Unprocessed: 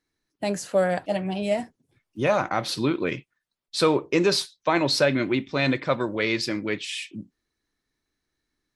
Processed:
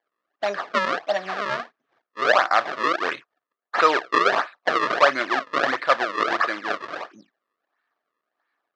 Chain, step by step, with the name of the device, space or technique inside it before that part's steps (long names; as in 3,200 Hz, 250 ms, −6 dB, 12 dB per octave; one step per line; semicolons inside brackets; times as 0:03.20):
circuit-bent sampling toy (sample-and-hold swept by an LFO 33×, swing 160% 1.5 Hz; loudspeaker in its box 550–4,900 Hz, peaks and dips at 690 Hz +6 dB, 1,200 Hz +10 dB, 1,700 Hz +9 dB)
level +2 dB